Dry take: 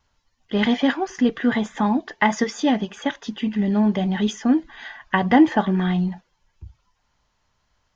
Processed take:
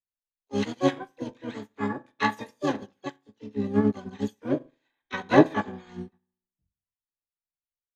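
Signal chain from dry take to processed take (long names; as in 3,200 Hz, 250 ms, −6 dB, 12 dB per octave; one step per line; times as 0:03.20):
low-pass that shuts in the quiet parts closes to 1,900 Hz, open at −16 dBFS
on a send at −5.5 dB: convolution reverb RT60 0.75 s, pre-delay 3 ms
on the sum: pitch-shifted copies added −12 semitones −10 dB, +5 semitones −4 dB, +12 semitones −4 dB
expander for the loud parts 2.5 to 1, over −33 dBFS
level −3.5 dB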